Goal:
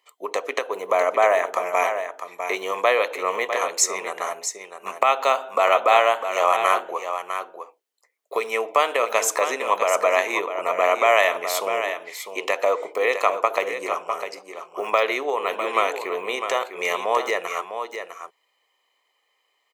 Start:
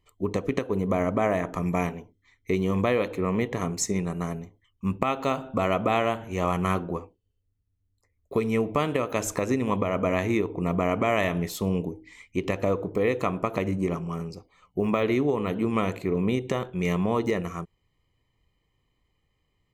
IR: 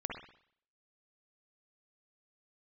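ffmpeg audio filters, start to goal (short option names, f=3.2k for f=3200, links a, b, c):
-filter_complex "[0:a]highpass=f=560:w=0.5412,highpass=f=560:w=1.3066,asplit=2[a][b];[b]aecho=0:1:653:0.376[c];[a][c]amix=inputs=2:normalize=0,volume=9dB"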